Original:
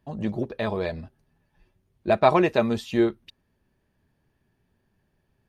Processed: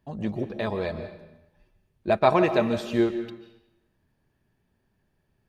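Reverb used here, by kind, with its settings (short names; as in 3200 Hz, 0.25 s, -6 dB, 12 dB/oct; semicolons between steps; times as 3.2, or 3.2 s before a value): digital reverb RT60 0.9 s, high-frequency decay 0.9×, pre-delay 0.105 s, DRR 9.5 dB; gain -1.5 dB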